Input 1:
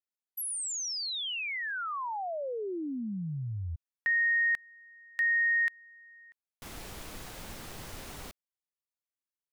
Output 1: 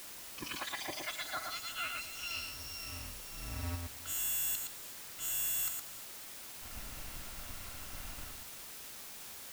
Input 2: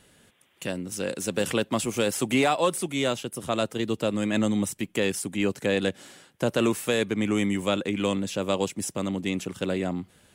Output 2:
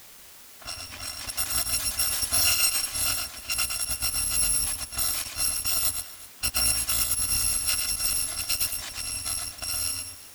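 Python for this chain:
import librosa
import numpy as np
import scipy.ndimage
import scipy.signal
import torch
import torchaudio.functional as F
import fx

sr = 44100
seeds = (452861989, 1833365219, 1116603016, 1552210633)

p1 = fx.bit_reversed(x, sr, seeds[0], block=256)
p2 = fx.peak_eq(p1, sr, hz=420.0, db=-10.0, octaves=0.33)
p3 = fx.env_lowpass(p2, sr, base_hz=1700.0, full_db=-22.5)
p4 = p3 + fx.echo_multitap(p3, sr, ms=(115, 365), db=(-4.5, -18.5), dry=0)
y = fx.quant_dither(p4, sr, seeds[1], bits=8, dither='triangular')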